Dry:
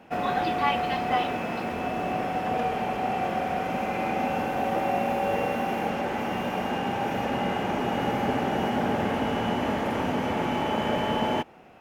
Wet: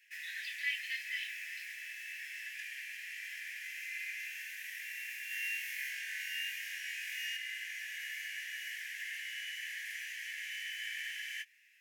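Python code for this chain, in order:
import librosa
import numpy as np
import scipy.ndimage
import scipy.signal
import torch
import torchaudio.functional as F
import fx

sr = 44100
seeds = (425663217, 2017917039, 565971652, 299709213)

y = scipy.signal.sosfilt(scipy.signal.cheby1(8, 1.0, 1700.0, 'highpass', fs=sr, output='sos'), x)
y = fx.peak_eq(y, sr, hz=3300.0, db=-9.0, octaves=1.1)
y = fx.doubler(y, sr, ms=19.0, db=-8.0)
y = fx.room_flutter(y, sr, wall_m=3.8, rt60_s=0.47, at=(5.28, 7.37))
y = y * librosa.db_to_amplitude(1.5)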